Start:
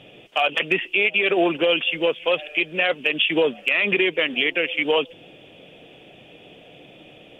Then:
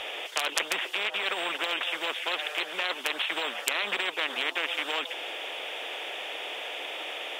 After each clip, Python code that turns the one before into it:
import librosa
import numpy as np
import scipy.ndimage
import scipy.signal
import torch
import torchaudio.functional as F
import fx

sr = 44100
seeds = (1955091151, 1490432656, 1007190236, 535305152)

y = scipy.signal.sosfilt(scipy.signal.butter(4, 600.0, 'highpass', fs=sr, output='sos'), x)
y = fx.spectral_comp(y, sr, ratio=4.0)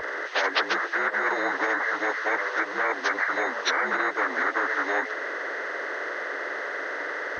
y = fx.partial_stretch(x, sr, pct=79)
y = fx.low_shelf(y, sr, hz=160.0, db=10.0)
y = y * librosa.db_to_amplitude(6.0)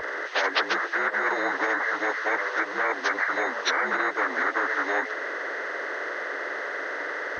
y = x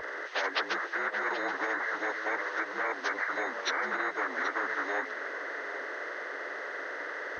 y = x + 10.0 ** (-13.0 / 20.0) * np.pad(x, (int(778 * sr / 1000.0), 0))[:len(x)]
y = y * librosa.db_to_amplitude(-6.5)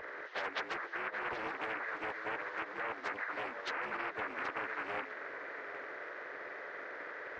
y = fx.air_absorb(x, sr, metres=160.0)
y = fx.doppler_dist(y, sr, depth_ms=0.35)
y = y * librosa.db_to_amplitude(-6.0)